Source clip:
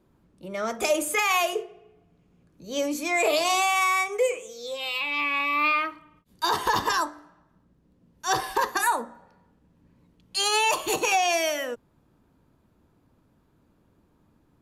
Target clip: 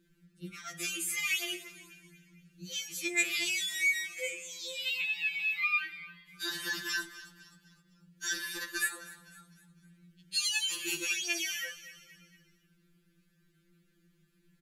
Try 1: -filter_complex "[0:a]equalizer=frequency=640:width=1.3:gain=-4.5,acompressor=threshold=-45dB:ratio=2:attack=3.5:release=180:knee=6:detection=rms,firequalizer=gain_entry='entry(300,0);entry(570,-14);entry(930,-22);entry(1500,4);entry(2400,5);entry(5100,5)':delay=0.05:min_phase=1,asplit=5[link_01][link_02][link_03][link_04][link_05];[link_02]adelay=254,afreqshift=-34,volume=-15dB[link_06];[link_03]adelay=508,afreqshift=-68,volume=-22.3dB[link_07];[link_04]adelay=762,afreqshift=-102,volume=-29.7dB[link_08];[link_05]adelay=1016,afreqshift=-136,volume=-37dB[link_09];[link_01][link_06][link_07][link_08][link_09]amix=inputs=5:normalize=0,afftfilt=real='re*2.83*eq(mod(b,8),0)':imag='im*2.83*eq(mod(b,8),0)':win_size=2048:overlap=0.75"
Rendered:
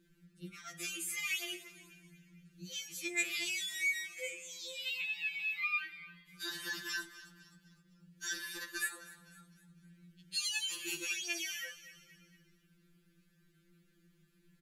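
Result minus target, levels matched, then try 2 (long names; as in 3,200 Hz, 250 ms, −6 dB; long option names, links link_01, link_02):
downward compressor: peak gain reduction +5 dB
-filter_complex "[0:a]equalizer=frequency=640:width=1.3:gain=-4.5,acompressor=threshold=-35dB:ratio=2:attack=3.5:release=180:knee=6:detection=rms,firequalizer=gain_entry='entry(300,0);entry(570,-14);entry(930,-22);entry(1500,4);entry(2400,5);entry(5100,5)':delay=0.05:min_phase=1,asplit=5[link_01][link_02][link_03][link_04][link_05];[link_02]adelay=254,afreqshift=-34,volume=-15dB[link_06];[link_03]adelay=508,afreqshift=-68,volume=-22.3dB[link_07];[link_04]adelay=762,afreqshift=-102,volume=-29.7dB[link_08];[link_05]adelay=1016,afreqshift=-136,volume=-37dB[link_09];[link_01][link_06][link_07][link_08][link_09]amix=inputs=5:normalize=0,afftfilt=real='re*2.83*eq(mod(b,8),0)':imag='im*2.83*eq(mod(b,8),0)':win_size=2048:overlap=0.75"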